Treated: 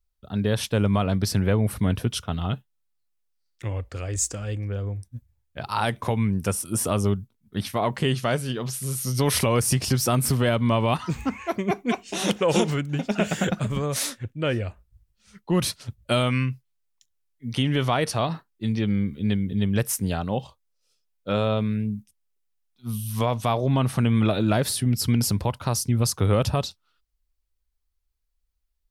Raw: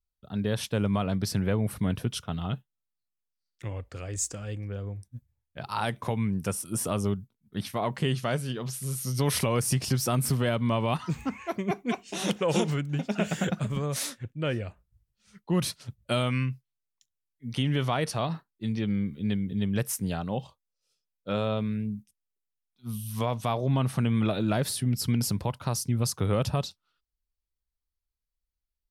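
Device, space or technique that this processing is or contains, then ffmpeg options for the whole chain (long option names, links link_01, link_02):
low shelf boost with a cut just above: -af "lowshelf=frequency=89:gain=7,equalizer=frequency=150:width_type=o:width=0.79:gain=-5,volume=5dB"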